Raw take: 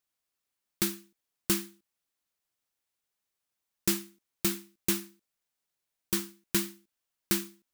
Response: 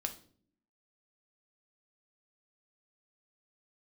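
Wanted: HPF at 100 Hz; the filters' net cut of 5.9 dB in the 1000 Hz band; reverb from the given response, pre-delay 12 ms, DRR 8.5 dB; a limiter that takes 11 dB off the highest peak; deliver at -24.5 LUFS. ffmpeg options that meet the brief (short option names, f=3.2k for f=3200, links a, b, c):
-filter_complex "[0:a]highpass=100,equalizer=f=1k:t=o:g=-8,alimiter=limit=-22.5dB:level=0:latency=1,asplit=2[a][b];[1:a]atrim=start_sample=2205,adelay=12[c];[b][c]afir=irnorm=-1:irlink=0,volume=-9dB[d];[a][d]amix=inputs=2:normalize=0,volume=13dB"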